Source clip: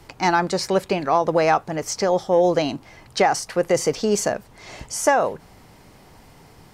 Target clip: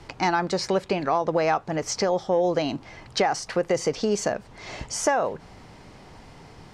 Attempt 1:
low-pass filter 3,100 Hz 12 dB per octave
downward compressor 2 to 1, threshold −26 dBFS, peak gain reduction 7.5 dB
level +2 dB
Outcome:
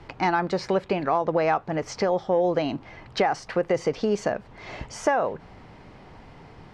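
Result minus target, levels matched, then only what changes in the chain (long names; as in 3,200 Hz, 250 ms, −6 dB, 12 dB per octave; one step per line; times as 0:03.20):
8,000 Hz band −10.0 dB
change: low-pass filter 6,400 Hz 12 dB per octave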